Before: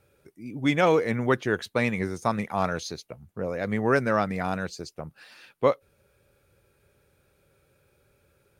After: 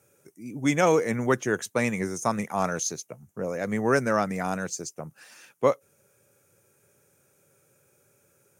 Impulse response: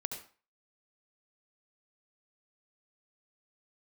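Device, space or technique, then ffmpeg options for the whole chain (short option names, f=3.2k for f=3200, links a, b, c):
budget condenser microphone: -af "highpass=f=110:w=0.5412,highpass=f=110:w=1.3066,highshelf=f=5.2k:t=q:w=3:g=7"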